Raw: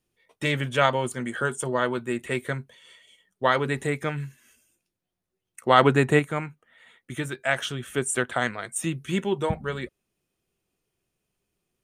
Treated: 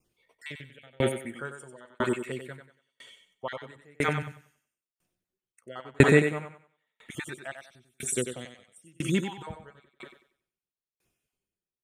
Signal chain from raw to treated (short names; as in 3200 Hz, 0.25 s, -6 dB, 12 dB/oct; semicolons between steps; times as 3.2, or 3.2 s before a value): random spectral dropouts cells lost 27%; 0.52–1.36 fixed phaser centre 2500 Hz, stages 4; 7.51–8.88 band shelf 1100 Hz -14.5 dB; thinning echo 94 ms, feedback 45%, high-pass 160 Hz, level -4 dB; dB-ramp tremolo decaying 1 Hz, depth 39 dB; gain +6 dB